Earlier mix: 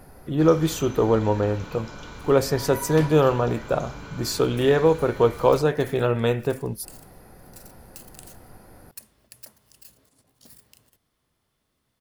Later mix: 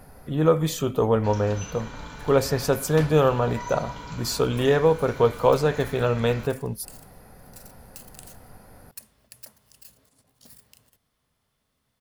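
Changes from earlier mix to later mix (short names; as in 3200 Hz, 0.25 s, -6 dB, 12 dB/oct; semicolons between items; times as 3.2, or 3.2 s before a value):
first sound: entry +0.85 s; master: add bell 340 Hz -9.5 dB 0.25 oct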